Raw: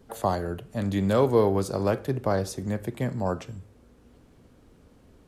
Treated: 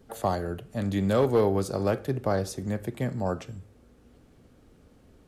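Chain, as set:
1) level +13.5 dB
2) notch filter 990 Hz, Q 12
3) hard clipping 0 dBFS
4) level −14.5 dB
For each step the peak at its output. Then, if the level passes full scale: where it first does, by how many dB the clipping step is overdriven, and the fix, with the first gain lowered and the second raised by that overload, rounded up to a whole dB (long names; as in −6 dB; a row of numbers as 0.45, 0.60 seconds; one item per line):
+5.0, +4.5, 0.0, −14.5 dBFS
step 1, 4.5 dB
step 1 +8.5 dB, step 4 −9.5 dB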